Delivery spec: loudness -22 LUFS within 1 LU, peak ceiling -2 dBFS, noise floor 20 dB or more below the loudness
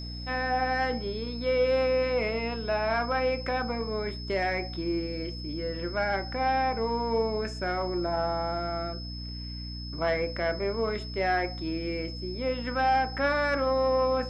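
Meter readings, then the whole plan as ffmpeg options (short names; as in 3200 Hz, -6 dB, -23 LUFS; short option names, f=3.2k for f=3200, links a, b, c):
hum 60 Hz; harmonics up to 300 Hz; hum level -36 dBFS; steady tone 5200 Hz; tone level -41 dBFS; loudness -29.0 LUFS; peak -16.0 dBFS; loudness target -22.0 LUFS
-> -af "bandreject=f=60:t=h:w=4,bandreject=f=120:t=h:w=4,bandreject=f=180:t=h:w=4,bandreject=f=240:t=h:w=4,bandreject=f=300:t=h:w=4"
-af "bandreject=f=5.2k:w=30"
-af "volume=7dB"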